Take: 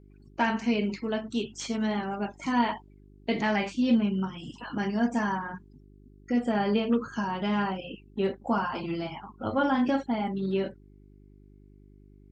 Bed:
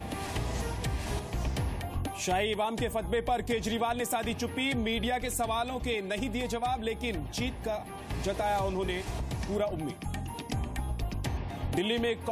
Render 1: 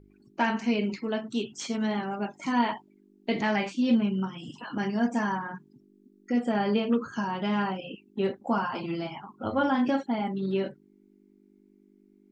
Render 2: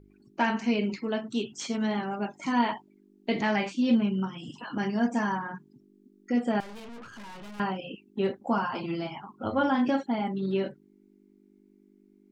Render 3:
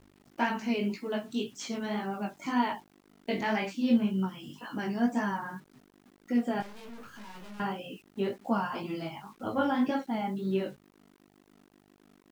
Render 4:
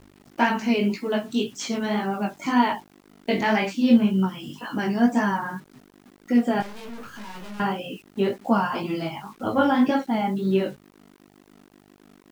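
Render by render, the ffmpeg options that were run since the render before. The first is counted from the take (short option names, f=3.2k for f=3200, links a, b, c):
-af "bandreject=f=50:t=h:w=4,bandreject=f=100:t=h:w=4,bandreject=f=150:t=h:w=4"
-filter_complex "[0:a]asettb=1/sr,asplit=3[a][b][c];[a]atrim=end=6.604[d];[b]atrim=start=6.6:end=7.6,asetpts=PTS-STARTPTS,afade=t=in:d=0.004:c=qsin,afade=t=out:st=0.996:d=0.004:c=qsin,aeval=exprs='(tanh(141*val(0)+0.55)-tanh(0.55))/141':c=same[e];[c]atrim=start=7.596[f];[d][e]acrossfade=d=0.004:c1=hsin:c2=qsin[g];[g][f]acrossfade=d=0.004:c1=qsin:c2=hsin"
-af "flanger=delay=15.5:depth=5.8:speed=1.9,acrusher=bits=9:mix=0:aa=0.000001"
-af "volume=8dB"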